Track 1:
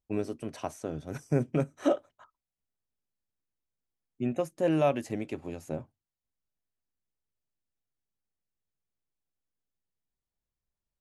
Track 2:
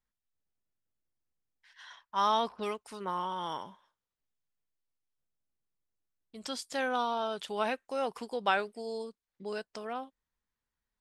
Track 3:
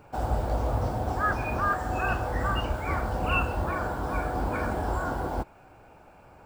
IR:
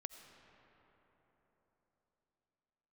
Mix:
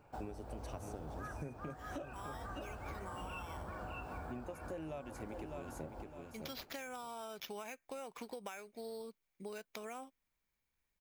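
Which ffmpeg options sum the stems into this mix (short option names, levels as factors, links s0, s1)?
-filter_complex "[0:a]highshelf=f=11000:g=10.5,adelay=100,volume=0.75,asplit=2[s0][s1];[s1]volume=0.266[s2];[1:a]equalizer=f=2300:t=o:w=0.23:g=14.5,acompressor=threshold=0.0141:ratio=6,acrusher=samples=5:mix=1:aa=0.000001,volume=0.794[s3];[2:a]acontrast=88,volume=0.119,asplit=2[s4][s5];[s5]volume=0.668[s6];[s2][s6]amix=inputs=2:normalize=0,aecho=0:1:608|1216|1824:1|0.15|0.0225[s7];[s0][s3][s4][s7]amix=inputs=4:normalize=0,acompressor=threshold=0.00891:ratio=16"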